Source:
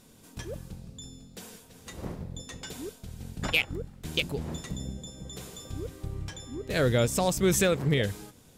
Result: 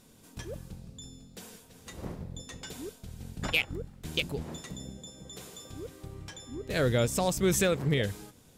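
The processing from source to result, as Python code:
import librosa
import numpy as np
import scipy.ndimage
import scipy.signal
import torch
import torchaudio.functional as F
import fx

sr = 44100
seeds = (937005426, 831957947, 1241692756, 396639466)

y = fx.low_shelf(x, sr, hz=130.0, db=-10.0, at=(4.43, 6.48))
y = y * librosa.db_to_amplitude(-2.0)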